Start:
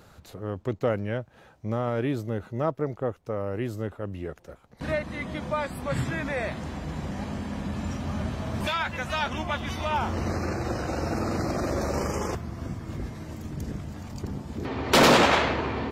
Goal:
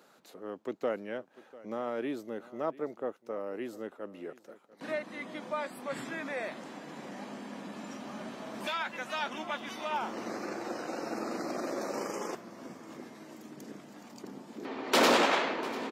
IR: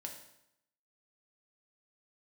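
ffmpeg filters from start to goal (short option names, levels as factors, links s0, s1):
-af "highpass=f=230:w=0.5412,highpass=f=230:w=1.3066,aecho=1:1:695:0.106,volume=0.501"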